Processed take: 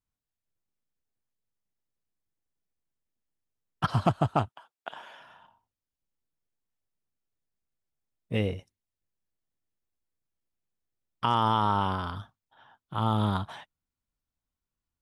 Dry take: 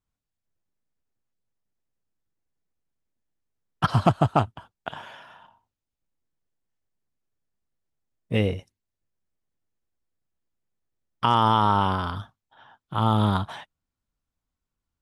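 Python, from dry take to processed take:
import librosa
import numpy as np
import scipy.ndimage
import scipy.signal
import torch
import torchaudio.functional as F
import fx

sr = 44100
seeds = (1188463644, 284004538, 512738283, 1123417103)

y = fx.highpass(x, sr, hz=fx.line((4.47, 730.0), (5.19, 220.0)), slope=12, at=(4.47, 5.19), fade=0.02)
y = y * librosa.db_to_amplitude(-5.0)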